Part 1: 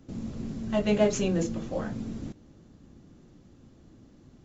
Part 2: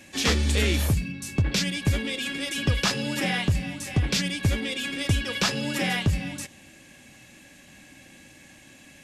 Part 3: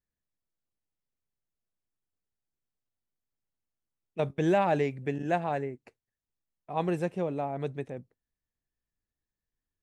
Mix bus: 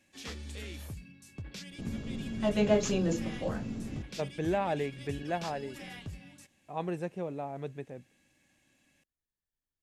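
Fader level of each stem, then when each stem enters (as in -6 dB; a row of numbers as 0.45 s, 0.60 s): -2.5 dB, -19.5 dB, -5.5 dB; 1.70 s, 0.00 s, 0.00 s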